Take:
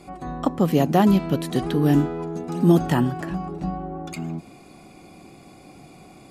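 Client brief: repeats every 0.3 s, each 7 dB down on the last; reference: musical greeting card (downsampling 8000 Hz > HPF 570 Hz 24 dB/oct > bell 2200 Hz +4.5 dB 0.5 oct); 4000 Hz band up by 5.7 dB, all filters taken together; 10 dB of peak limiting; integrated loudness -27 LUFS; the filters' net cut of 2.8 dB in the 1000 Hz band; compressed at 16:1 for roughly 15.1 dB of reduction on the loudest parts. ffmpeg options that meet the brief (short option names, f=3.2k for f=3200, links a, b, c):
-af "equalizer=f=1k:t=o:g=-4,equalizer=f=4k:t=o:g=7,acompressor=threshold=-26dB:ratio=16,alimiter=limit=-23.5dB:level=0:latency=1,aecho=1:1:300|600|900|1200|1500:0.447|0.201|0.0905|0.0407|0.0183,aresample=8000,aresample=44100,highpass=f=570:w=0.5412,highpass=f=570:w=1.3066,equalizer=f=2.2k:t=o:w=0.5:g=4.5,volume=15.5dB"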